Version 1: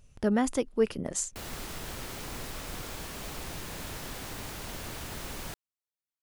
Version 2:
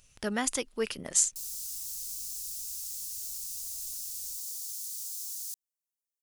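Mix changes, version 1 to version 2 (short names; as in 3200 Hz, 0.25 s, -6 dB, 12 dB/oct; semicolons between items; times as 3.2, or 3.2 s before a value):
background: add inverse Chebyshev high-pass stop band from 1300 Hz, stop band 70 dB; master: add tilt shelf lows -8.5 dB, about 1200 Hz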